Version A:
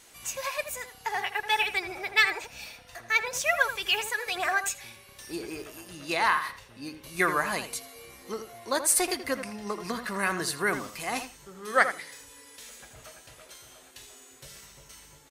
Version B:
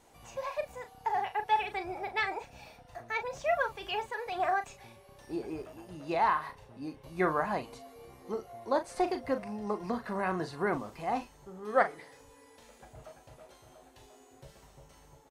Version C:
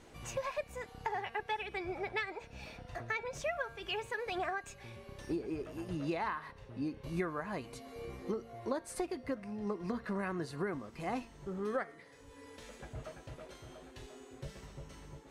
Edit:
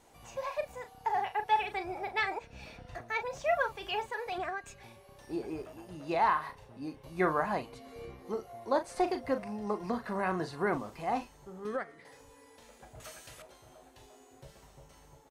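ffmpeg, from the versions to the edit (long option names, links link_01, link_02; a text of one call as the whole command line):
ffmpeg -i take0.wav -i take1.wav -i take2.wav -filter_complex "[2:a]asplit=4[link_01][link_02][link_03][link_04];[1:a]asplit=6[link_05][link_06][link_07][link_08][link_09][link_10];[link_05]atrim=end=2.392[link_11];[link_01]atrim=start=2.388:end=3.012[link_12];[link_06]atrim=start=3.008:end=4.382[link_13];[link_02]atrim=start=4.378:end=4.832[link_14];[link_07]atrim=start=4.828:end=7.85[link_15];[link_03]atrim=start=7.61:end=8.28[link_16];[link_08]atrim=start=8.04:end=11.652[link_17];[link_04]atrim=start=11.648:end=12.052[link_18];[link_09]atrim=start=12.048:end=13.002[link_19];[0:a]atrim=start=12.998:end=13.422[link_20];[link_10]atrim=start=13.418[link_21];[link_11][link_12]acrossfade=duration=0.004:curve1=hsin:curve2=hsin[link_22];[link_22][link_13]acrossfade=duration=0.004:curve1=hsin:curve2=hsin[link_23];[link_23][link_14]acrossfade=duration=0.004:curve1=hsin:curve2=hsin[link_24];[link_24][link_15]acrossfade=duration=0.004:curve1=hsin:curve2=hsin[link_25];[link_25][link_16]acrossfade=duration=0.24:curve1=tri:curve2=tri[link_26];[link_26][link_17]acrossfade=duration=0.24:curve1=tri:curve2=tri[link_27];[link_27][link_18]acrossfade=duration=0.004:curve1=hsin:curve2=hsin[link_28];[link_28][link_19]acrossfade=duration=0.004:curve1=hsin:curve2=hsin[link_29];[link_29][link_20]acrossfade=duration=0.004:curve1=hsin:curve2=hsin[link_30];[link_30][link_21]acrossfade=duration=0.004:curve1=hsin:curve2=hsin" out.wav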